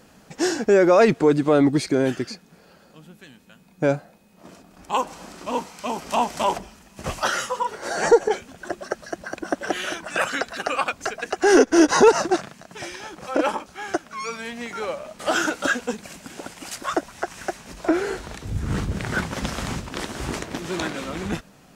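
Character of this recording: noise floor -53 dBFS; spectral tilt -4.5 dB/oct

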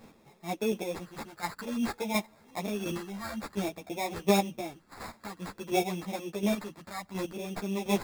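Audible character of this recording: phasing stages 2, 0.54 Hz, lowest notch 430–4000 Hz; aliases and images of a low sample rate 3000 Hz, jitter 0%; chopped level 1.4 Hz, depth 60%, duty 15%; a shimmering, thickened sound

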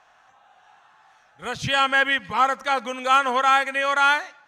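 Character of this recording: noise floor -58 dBFS; spectral tilt -2.5 dB/oct

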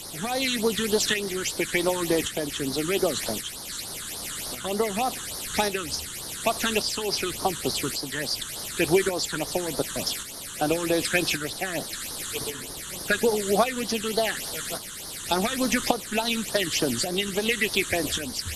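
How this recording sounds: a quantiser's noise floor 6-bit, dither triangular; phasing stages 8, 3.4 Hz, lowest notch 660–2600 Hz; tremolo saw up 0.88 Hz, depth 50%; Vorbis

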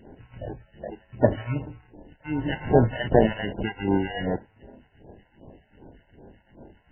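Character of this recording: tremolo triangle 2.6 Hz, depth 90%; aliases and images of a low sample rate 1200 Hz, jitter 0%; phasing stages 2, 2.6 Hz, lowest notch 250–2700 Hz; MP3

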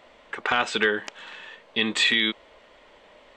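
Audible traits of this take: noise floor -55 dBFS; spectral tilt -2.0 dB/oct

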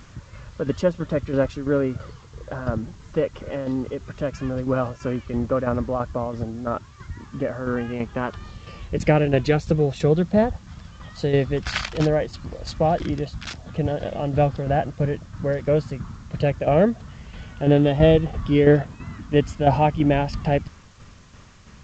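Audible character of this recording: tremolo saw down 3 Hz, depth 60%; a quantiser's noise floor 10-bit, dither triangular; G.722

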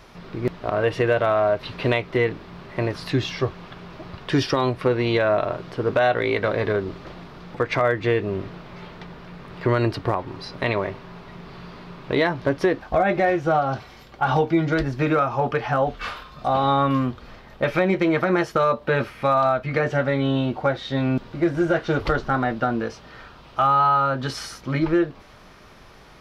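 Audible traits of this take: noise floor -47 dBFS; spectral tilt -5.0 dB/oct

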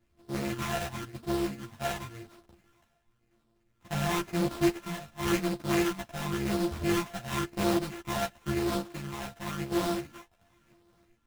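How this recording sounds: a buzz of ramps at a fixed pitch in blocks of 128 samples; phasing stages 12, 0.94 Hz, lowest notch 350–2100 Hz; aliases and images of a low sample rate 4600 Hz, jitter 20%; a shimmering, thickened sound

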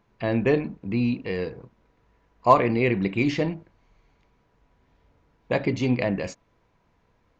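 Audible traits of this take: noise floor -67 dBFS; spectral tilt -6.0 dB/oct

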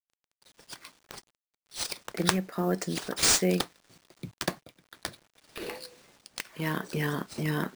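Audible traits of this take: a quantiser's noise floor 10-bit, dither none; chopped level 0.62 Hz, depth 60%, duty 85%; aliases and images of a low sample rate 14000 Hz, jitter 0%

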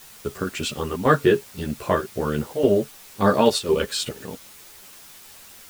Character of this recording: chopped level 1.9 Hz, depth 65%, duty 80%; a quantiser's noise floor 8-bit, dither triangular; a shimmering, thickened sound

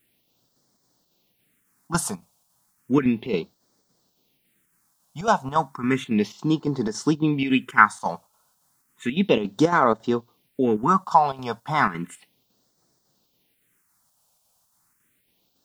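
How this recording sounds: chopped level 3.6 Hz, depth 60%, duty 75%; a quantiser's noise floor 12-bit, dither triangular; phasing stages 4, 0.33 Hz, lowest notch 320–2600 Hz

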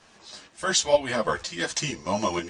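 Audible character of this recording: tremolo saw up 2.1 Hz, depth 50%; a shimmering, thickened sound

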